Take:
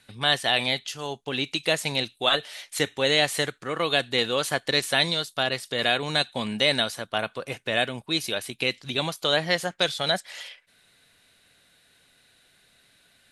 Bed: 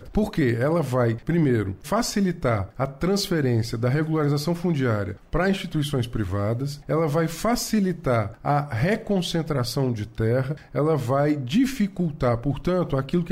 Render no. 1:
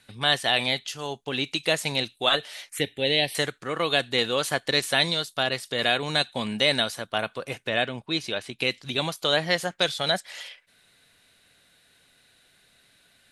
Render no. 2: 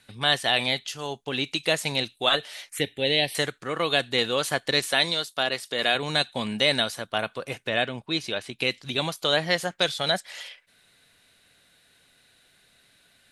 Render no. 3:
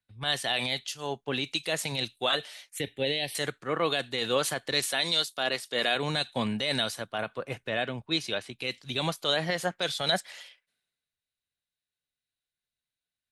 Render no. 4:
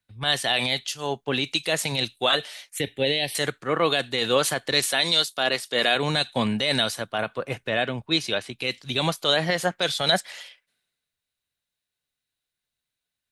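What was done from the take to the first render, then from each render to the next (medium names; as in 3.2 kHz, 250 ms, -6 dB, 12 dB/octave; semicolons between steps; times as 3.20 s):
2.69–3.35 s: touch-sensitive phaser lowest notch 580 Hz, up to 1.3 kHz, full sweep at -23 dBFS; 7.69–8.59 s: distance through air 75 m
4.86–5.95 s: Bessel high-pass 220 Hz
peak limiter -16.5 dBFS, peak gain reduction 10 dB; three bands expanded up and down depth 100%
trim +5.5 dB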